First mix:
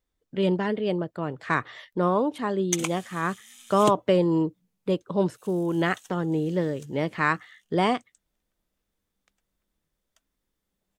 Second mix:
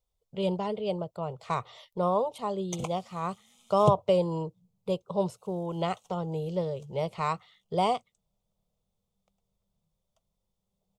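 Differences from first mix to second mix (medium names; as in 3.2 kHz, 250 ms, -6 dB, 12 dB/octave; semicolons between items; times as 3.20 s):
background: add tilt EQ -4.5 dB/octave; master: add static phaser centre 700 Hz, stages 4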